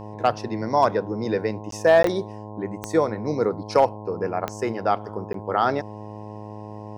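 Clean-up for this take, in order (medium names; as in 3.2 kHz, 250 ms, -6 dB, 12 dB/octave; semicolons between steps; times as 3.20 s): clip repair -7.5 dBFS; de-click; de-hum 105.7 Hz, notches 10; interpolate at 1.71/2.03/5.33 s, 13 ms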